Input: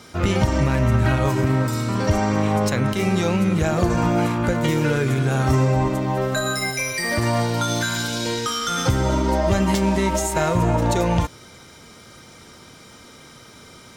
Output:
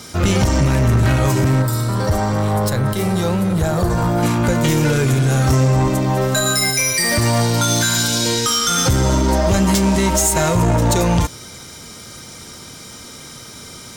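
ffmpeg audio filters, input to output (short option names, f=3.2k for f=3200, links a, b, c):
-filter_complex "[0:a]bass=f=250:g=3,treble=f=4k:g=9,asoftclip=type=tanh:threshold=-14.5dB,asettb=1/sr,asplit=3[a][b][c];[a]atrim=end=1.624[d];[b]atrim=start=1.62:end=4.23,asetpts=PTS-STARTPTS,afade=t=in:d=0.004:c=qsin,afade=t=out:st=2.606:d=0.004:c=qsin,equalizer=f=250:t=o:w=0.67:g=-8,equalizer=f=2.5k:t=o:w=0.67:g=-9,equalizer=f=6.3k:t=o:w=0.67:g=-10[e];[c]atrim=start=4.226[f];[d][e]acrossfade=d=0.004:c1=hsin:c2=qsin[g];[g][f]acrossfade=d=0.004:c1=qsin:c2=hsin,volume=5dB"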